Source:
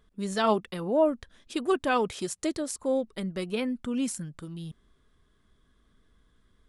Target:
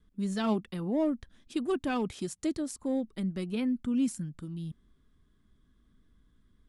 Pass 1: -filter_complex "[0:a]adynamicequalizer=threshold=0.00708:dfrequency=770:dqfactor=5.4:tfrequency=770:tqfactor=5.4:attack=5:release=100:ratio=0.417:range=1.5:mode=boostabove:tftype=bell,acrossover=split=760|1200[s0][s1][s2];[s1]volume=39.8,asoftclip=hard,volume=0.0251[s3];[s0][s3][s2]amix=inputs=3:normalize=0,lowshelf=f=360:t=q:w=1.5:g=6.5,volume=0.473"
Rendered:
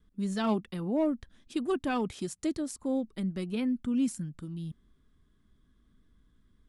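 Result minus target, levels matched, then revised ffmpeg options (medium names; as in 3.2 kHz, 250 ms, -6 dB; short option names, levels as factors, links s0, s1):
overload inside the chain: distortion -5 dB
-filter_complex "[0:a]adynamicequalizer=threshold=0.00708:dfrequency=770:dqfactor=5.4:tfrequency=770:tqfactor=5.4:attack=5:release=100:ratio=0.417:range=1.5:mode=boostabove:tftype=bell,acrossover=split=760|1200[s0][s1][s2];[s1]volume=89.1,asoftclip=hard,volume=0.0112[s3];[s0][s3][s2]amix=inputs=3:normalize=0,lowshelf=f=360:t=q:w=1.5:g=6.5,volume=0.473"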